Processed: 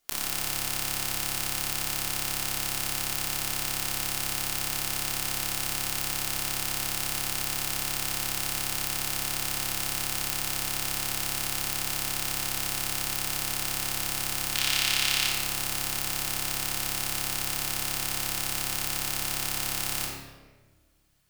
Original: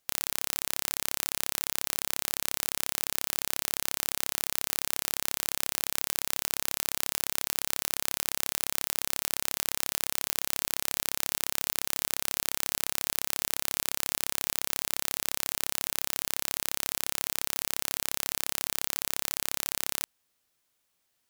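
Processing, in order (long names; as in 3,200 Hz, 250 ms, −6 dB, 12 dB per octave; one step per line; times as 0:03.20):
0:14.55–0:15.27: parametric band 3,100 Hz +12.5 dB 2 octaves
in parallel at +1 dB: brickwall limiter −7.5 dBFS, peak gain reduction 9 dB
on the sum: rectangular room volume 1,000 cubic metres, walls mixed, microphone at 3.2 metres
level −7 dB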